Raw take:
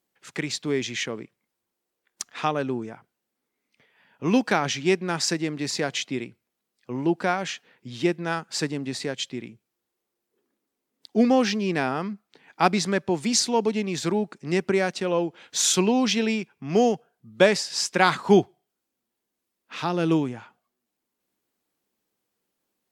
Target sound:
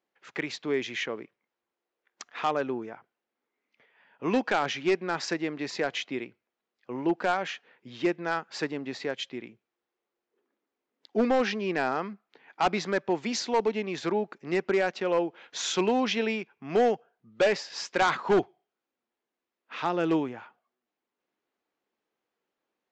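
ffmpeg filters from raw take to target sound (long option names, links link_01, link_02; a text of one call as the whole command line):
ffmpeg -i in.wav -af "bass=frequency=250:gain=-12,treble=frequency=4000:gain=-14,aresample=16000,asoftclip=type=hard:threshold=-18dB,aresample=44100" out.wav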